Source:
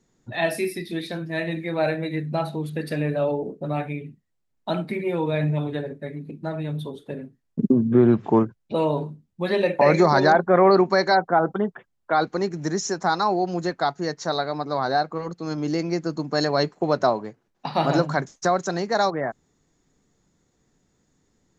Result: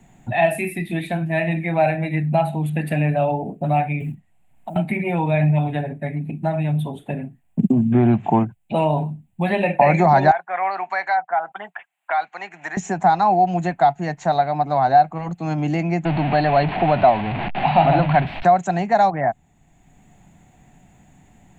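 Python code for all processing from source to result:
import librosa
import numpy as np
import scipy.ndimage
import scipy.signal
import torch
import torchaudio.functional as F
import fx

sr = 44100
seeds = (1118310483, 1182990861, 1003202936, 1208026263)

y = fx.chain(x, sr, fx.env_lowpass_down(base_hz=400.0, full_db=-25.5),
    fx.over_compress(threshold_db=-38.0, ratio=-1.0),
    fx.quant_float(bits=4), at=(4.0, 4.76))
y = fx.chain(y, sr, fx.highpass(hz=1400.0, slope=12),
    fx.high_shelf(hz=4600.0, db=-11.0),
    fx.band_squash(depth_pct=40), at=(10.31, 12.77))
y = fx.chain(y, sr, fx.zero_step(step_db=-23.0),
    fx.ellip_lowpass(hz=4400.0, order=4, stop_db=40), at=(16.05, 18.45))
y = fx.curve_eq(y, sr, hz=(180.0, 480.0, 730.0, 1200.0, 2600.0, 5300.0, 7600.0), db=(0, -14, 6, -10, 2, -24, -3))
y = fx.band_squash(y, sr, depth_pct=40)
y = F.gain(torch.from_numpy(y), 6.5).numpy()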